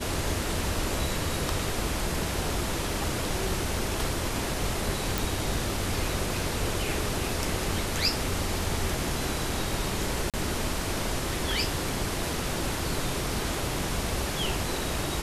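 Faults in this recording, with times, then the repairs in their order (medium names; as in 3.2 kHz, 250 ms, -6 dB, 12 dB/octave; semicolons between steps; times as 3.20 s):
5.18 s: pop
10.30–10.34 s: dropout 37 ms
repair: de-click; interpolate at 10.30 s, 37 ms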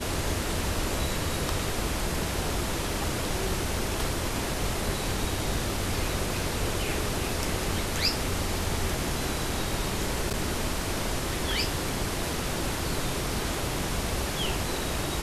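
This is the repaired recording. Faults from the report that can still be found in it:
nothing left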